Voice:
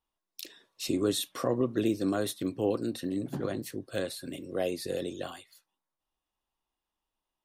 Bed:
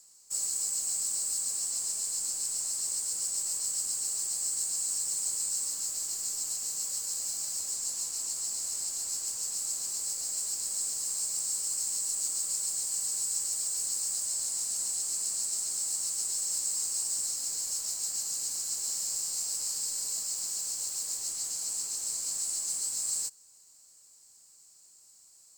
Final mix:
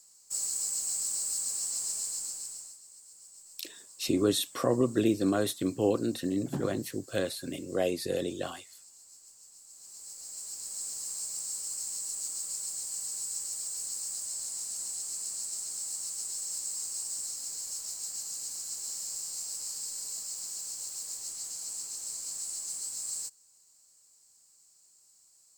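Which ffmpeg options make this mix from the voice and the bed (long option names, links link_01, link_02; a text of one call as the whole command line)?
ffmpeg -i stem1.wav -i stem2.wav -filter_complex "[0:a]adelay=3200,volume=2dB[link_01];[1:a]volume=15dB,afade=type=out:start_time=1.98:duration=0.81:silence=0.105925,afade=type=in:start_time=9.68:duration=1.26:silence=0.158489[link_02];[link_01][link_02]amix=inputs=2:normalize=0" out.wav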